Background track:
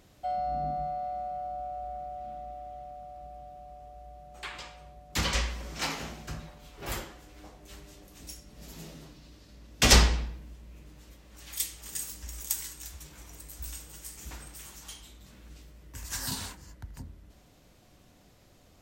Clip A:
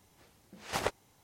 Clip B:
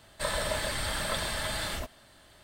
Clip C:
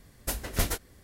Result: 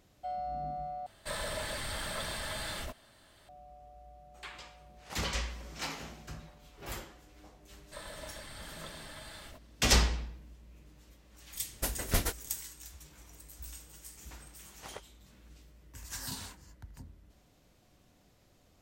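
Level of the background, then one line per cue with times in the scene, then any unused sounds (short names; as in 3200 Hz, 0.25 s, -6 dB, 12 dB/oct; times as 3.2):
background track -6 dB
1.06 replace with B -4 dB + soft clip -26.5 dBFS
4.37 add A -11.5 dB
7.72 add B -15 dB
11.55 add C -2 dB
14.1 add A -14.5 dB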